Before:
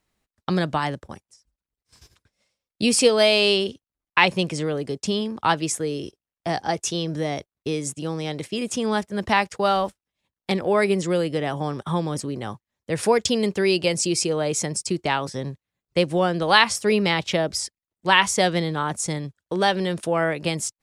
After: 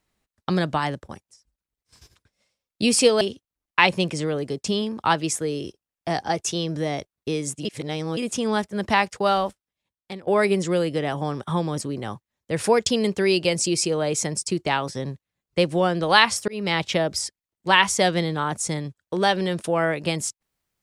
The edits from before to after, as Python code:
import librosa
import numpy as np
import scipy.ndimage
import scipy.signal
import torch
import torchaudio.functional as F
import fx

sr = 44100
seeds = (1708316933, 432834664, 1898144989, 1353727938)

y = fx.edit(x, sr, fx.cut(start_s=3.21, length_s=0.39),
    fx.reverse_span(start_s=8.04, length_s=0.52),
    fx.fade_out_to(start_s=9.71, length_s=0.95, floor_db=-17.5),
    fx.fade_in_span(start_s=16.87, length_s=0.29), tone=tone)